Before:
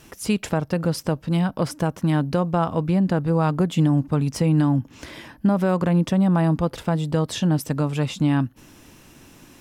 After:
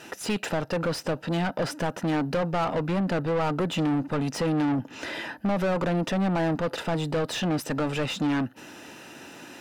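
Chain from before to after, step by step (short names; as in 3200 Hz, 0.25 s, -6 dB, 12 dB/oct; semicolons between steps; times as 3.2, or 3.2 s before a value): notch comb 1100 Hz; overdrive pedal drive 26 dB, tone 2400 Hz, clips at -10 dBFS; gain -8 dB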